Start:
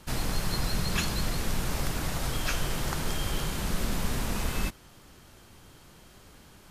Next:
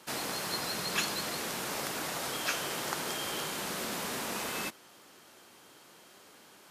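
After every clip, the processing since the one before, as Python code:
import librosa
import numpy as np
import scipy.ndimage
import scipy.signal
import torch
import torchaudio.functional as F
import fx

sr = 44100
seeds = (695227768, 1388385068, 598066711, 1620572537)

y = scipy.signal.sosfilt(scipy.signal.butter(2, 320.0, 'highpass', fs=sr, output='sos'), x)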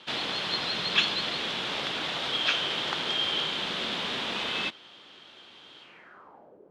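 y = fx.filter_sweep_lowpass(x, sr, from_hz=3400.0, to_hz=460.0, start_s=5.8, end_s=6.6, q=4.4)
y = y * librosa.db_to_amplitude(1.5)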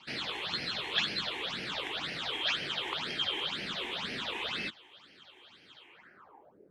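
y = fx.phaser_stages(x, sr, stages=8, low_hz=170.0, high_hz=1100.0, hz=2.0, feedback_pct=25)
y = y * librosa.db_to_amplitude(-2.0)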